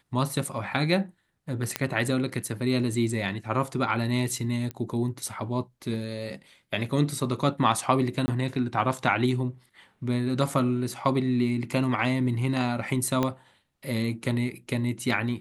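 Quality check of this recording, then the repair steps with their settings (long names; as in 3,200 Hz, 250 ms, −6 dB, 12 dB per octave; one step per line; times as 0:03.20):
0:01.76: click −9 dBFS
0:04.71: click −20 dBFS
0:08.26–0:08.28: drop-out 20 ms
0:13.23: click −12 dBFS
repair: click removal
repair the gap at 0:08.26, 20 ms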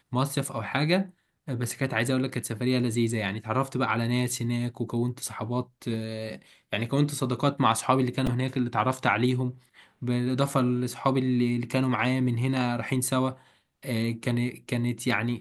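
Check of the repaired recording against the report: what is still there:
0:13.23: click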